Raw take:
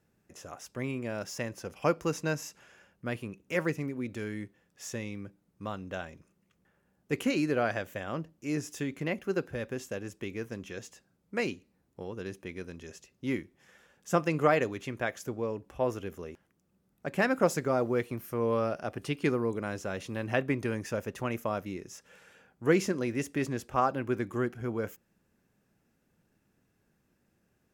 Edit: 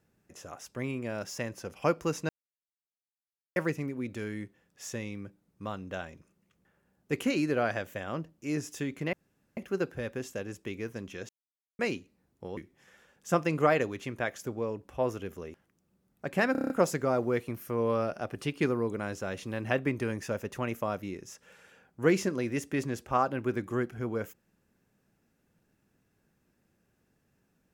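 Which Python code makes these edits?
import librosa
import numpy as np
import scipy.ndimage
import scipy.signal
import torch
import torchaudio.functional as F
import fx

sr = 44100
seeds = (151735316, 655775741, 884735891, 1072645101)

y = fx.edit(x, sr, fx.silence(start_s=2.29, length_s=1.27),
    fx.insert_room_tone(at_s=9.13, length_s=0.44),
    fx.silence(start_s=10.85, length_s=0.5),
    fx.cut(start_s=12.13, length_s=1.25),
    fx.stutter(start_s=17.33, slice_s=0.03, count=7), tone=tone)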